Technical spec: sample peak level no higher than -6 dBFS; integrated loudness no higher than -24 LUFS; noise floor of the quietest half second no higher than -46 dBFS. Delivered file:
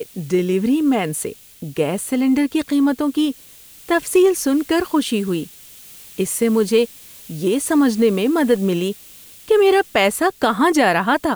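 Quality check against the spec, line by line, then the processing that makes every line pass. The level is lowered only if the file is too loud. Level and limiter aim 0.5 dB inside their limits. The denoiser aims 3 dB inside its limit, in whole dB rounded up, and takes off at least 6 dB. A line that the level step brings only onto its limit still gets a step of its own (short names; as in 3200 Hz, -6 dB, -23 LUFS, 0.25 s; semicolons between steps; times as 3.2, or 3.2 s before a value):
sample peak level -5.0 dBFS: fail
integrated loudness -18.0 LUFS: fail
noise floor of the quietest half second -44 dBFS: fail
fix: gain -6.5 dB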